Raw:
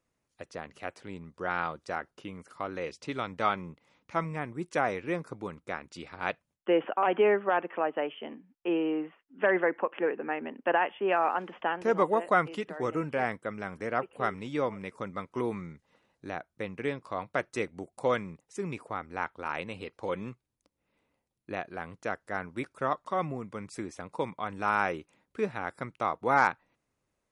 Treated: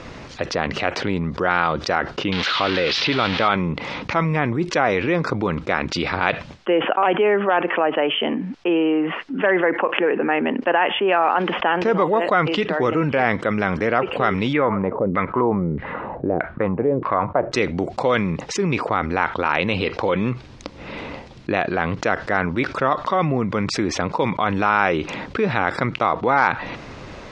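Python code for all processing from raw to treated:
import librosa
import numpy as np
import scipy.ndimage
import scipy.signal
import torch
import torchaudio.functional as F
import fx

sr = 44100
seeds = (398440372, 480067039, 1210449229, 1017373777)

y = fx.chain(x, sr, fx.crossing_spikes(level_db=-21.0),
    fx.lowpass(hz=3900.0, slope=24), at=(2.32, 3.48))
y = fx.chain(y, sr, fx.filter_lfo_lowpass(shape='saw_down', hz=1.6, low_hz=380.0, high_hz=2300.0, q=2.2),
    fx.lowpass(hz=3900.0, slope=12), at=(14.53, 17.52))
y = scipy.signal.sosfilt(scipy.signal.butter(4, 5000.0, 'lowpass', fs=sr, output='sos'), y)
y = fx.dynamic_eq(y, sr, hz=3300.0, q=1.2, threshold_db=-49.0, ratio=4.0, max_db=3)
y = fx.env_flatten(y, sr, amount_pct=70)
y = y * librosa.db_to_amplitude(4.5)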